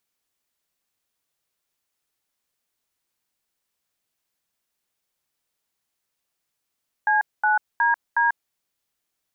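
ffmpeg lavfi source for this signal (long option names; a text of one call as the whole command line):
ffmpeg -f lavfi -i "aevalsrc='0.112*clip(min(mod(t,0.365),0.142-mod(t,0.365))/0.002,0,1)*(eq(floor(t/0.365),0)*(sin(2*PI*852*mod(t,0.365))+sin(2*PI*1633*mod(t,0.365)))+eq(floor(t/0.365),1)*(sin(2*PI*852*mod(t,0.365))+sin(2*PI*1477*mod(t,0.365)))+eq(floor(t/0.365),2)*(sin(2*PI*941*mod(t,0.365))+sin(2*PI*1633*mod(t,0.365)))+eq(floor(t/0.365),3)*(sin(2*PI*941*mod(t,0.365))+sin(2*PI*1633*mod(t,0.365))))':duration=1.46:sample_rate=44100" out.wav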